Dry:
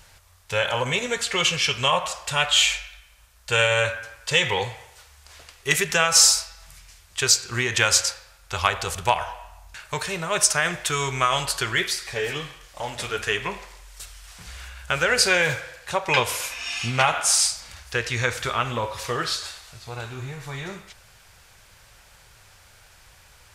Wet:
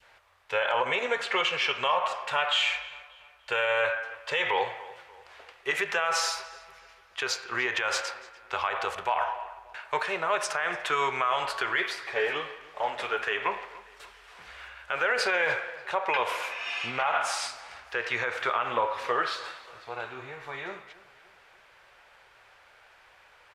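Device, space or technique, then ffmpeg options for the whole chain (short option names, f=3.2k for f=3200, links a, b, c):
DJ mixer with the lows and highs turned down: -filter_complex "[0:a]asettb=1/sr,asplit=3[a][b][c];[a]atrim=end=6.204[d];[b]atrim=start=6.2:end=7.8,asetpts=PTS-STARTPTS,afade=t=in:d=0.004:c=qsin,afade=t=out:st=1.596:d=0.004:c=qsin,bandreject=f=8k:w=8.6[e];[c]atrim=start=7.796[f];[d][e]acrossfade=d=0.004:c1=hsin:c2=qsin[g];[g][f]acrossfade=d=0.004:c1=qsin:c2=hsin,adynamicequalizer=threshold=0.02:dfrequency=950:dqfactor=0.81:tfrequency=950:tqfactor=0.81:attack=5:release=100:ratio=0.375:range=2:mode=boostabove:tftype=bell,acrossover=split=330 3200:gain=0.1 1 0.1[h][i][j];[h][i][j]amix=inputs=3:normalize=0,alimiter=limit=-16dB:level=0:latency=1:release=66,asplit=2[k][l];[l]adelay=292,lowpass=f=3.9k:p=1,volume=-19dB,asplit=2[m][n];[n]adelay=292,lowpass=f=3.9k:p=1,volume=0.47,asplit=2[o][p];[p]adelay=292,lowpass=f=3.9k:p=1,volume=0.47,asplit=2[q][r];[r]adelay=292,lowpass=f=3.9k:p=1,volume=0.47[s];[k][m][o][q][s]amix=inputs=5:normalize=0"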